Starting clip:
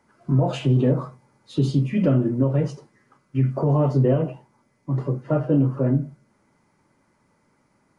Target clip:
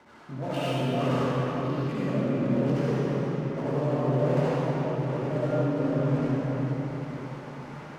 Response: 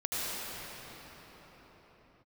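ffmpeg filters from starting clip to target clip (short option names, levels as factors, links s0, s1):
-filter_complex "[0:a]aeval=exprs='val(0)+0.5*0.0473*sgn(val(0))':c=same,acrossover=split=290[s0][s1];[s1]adynamicsmooth=sensitivity=4:basefreq=1100[s2];[s0][s2]amix=inputs=2:normalize=0,agate=range=0.0891:threshold=0.0316:ratio=16:detection=peak,areverse,acompressor=threshold=0.0282:ratio=6,areverse,lowshelf=f=110:g=-11.5[s3];[1:a]atrim=start_sample=2205,asetrate=52920,aresample=44100[s4];[s3][s4]afir=irnorm=-1:irlink=0,volume=1.41"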